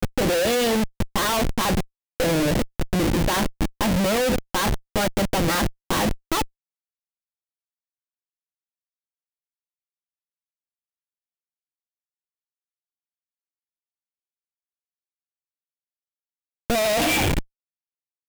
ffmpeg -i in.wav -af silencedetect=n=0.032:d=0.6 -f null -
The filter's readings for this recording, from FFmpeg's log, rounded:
silence_start: 6.44
silence_end: 16.70 | silence_duration: 10.26
silence_start: 17.41
silence_end: 18.28 | silence_duration: 0.88